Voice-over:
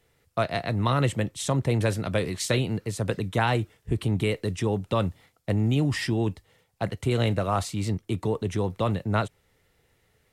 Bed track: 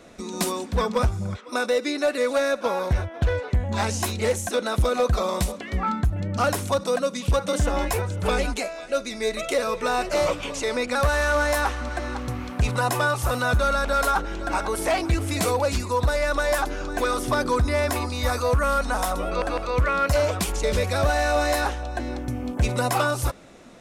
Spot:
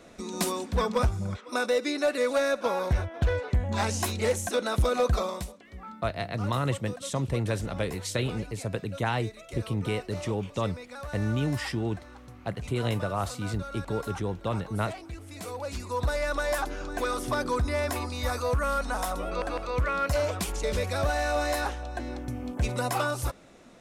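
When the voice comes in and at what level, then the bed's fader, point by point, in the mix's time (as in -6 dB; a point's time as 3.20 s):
5.65 s, -4.5 dB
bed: 5.18 s -3 dB
5.60 s -18 dB
15.29 s -18 dB
16.06 s -5.5 dB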